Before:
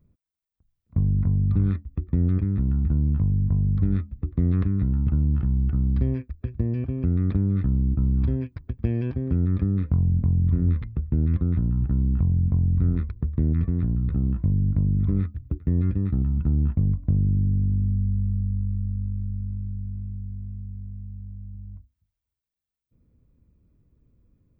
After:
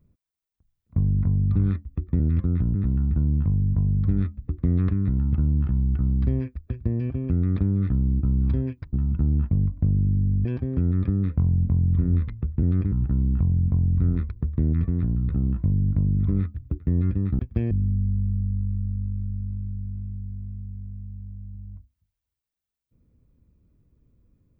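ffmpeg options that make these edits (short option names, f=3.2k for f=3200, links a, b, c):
-filter_complex "[0:a]asplit=9[a][b][c][d][e][f][g][h][i];[a]atrim=end=2.202[j];[b]atrim=start=11.168:end=11.722[k];[c]atrim=start=2.488:end=8.672[l];[d]atrim=start=16.188:end=17.712[m];[e]atrim=start=8.988:end=11.172[n];[f]atrim=start=2.198:end=2.492[o];[g]atrim=start=11.718:end=16.192[p];[h]atrim=start=8.668:end=8.992[q];[i]atrim=start=17.708[r];[j][k]acrossfade=d=0.004:c1=hsin:c2=hsin[s];[s][l]acrossfade=d=0.004:c1=hsin:c2=hsin[t];[t][m]acrossfade=d=0.004:c1=hsin:c2=hsin[u];[u][n]acrossfade=d=0.004:c1=hsin:c2=hsin[v];[v][o]acrossfade=d=0.004:c1=hsin:c2=hsin[w];[w][p]acrossfade=d=0.004:c1=hsin:c2=hsin[x];[x][q]acrossfade=d=0.004:c1=hsin:c2=hsin[y];[y][r]acrossfade=d=0.004:c1=hsin:c2=hsin"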